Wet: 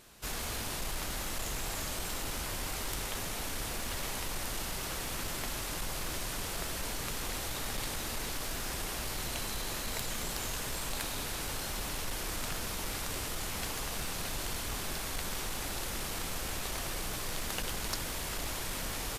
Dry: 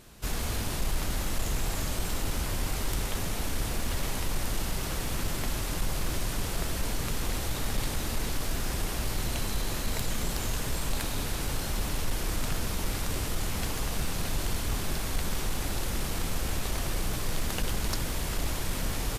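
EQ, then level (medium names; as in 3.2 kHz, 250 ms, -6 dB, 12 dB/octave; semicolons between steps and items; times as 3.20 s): bass shelf 330 Hz -9 dB; -1.5 dB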